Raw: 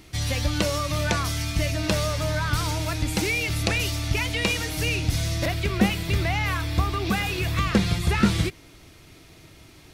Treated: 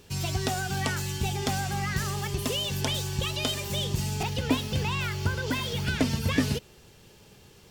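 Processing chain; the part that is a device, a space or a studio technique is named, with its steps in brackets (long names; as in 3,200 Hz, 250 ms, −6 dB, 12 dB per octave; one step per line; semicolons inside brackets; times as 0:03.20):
nightcore (speed change +29%)
level −4.5 dB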